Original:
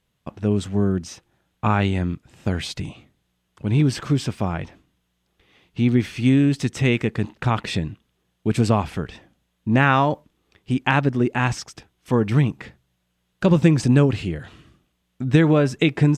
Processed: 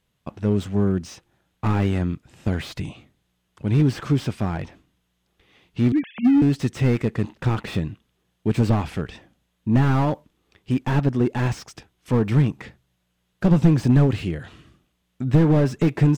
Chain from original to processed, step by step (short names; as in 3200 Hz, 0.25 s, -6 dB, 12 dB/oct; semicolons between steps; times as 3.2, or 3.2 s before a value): 5.92–6.42 sine-wave speech; slew limiter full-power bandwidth 64 Hz